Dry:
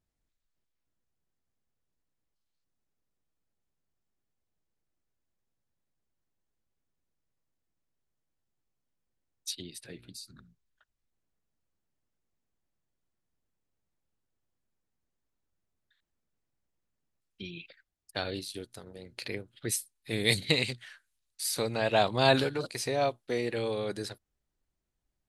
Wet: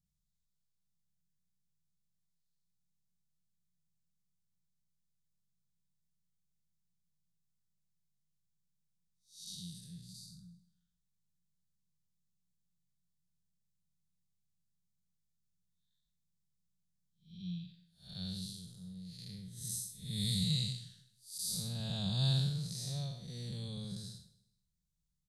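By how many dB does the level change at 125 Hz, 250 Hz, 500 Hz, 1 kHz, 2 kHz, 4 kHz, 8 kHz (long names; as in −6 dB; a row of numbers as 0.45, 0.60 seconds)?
+1.5, −5.0, −24.5, −25.0, −24.5, −5.5, −5.0 decibels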